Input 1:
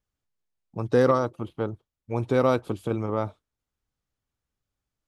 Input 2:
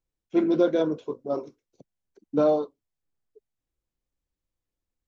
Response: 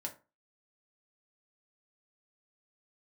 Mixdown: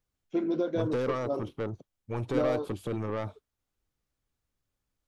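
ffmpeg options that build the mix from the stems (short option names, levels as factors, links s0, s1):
-filter_complex "[0:a]acompressor=threshold=0.0891:ratio=6,asoftclip=type=tanh:threshold=0.0531,volume=0.944[s0];[1:a]acompressor=threshold=0.0631:ratio=4,volume=0.794[s1];[s0][s1]amix=inputs=2:normalize=0"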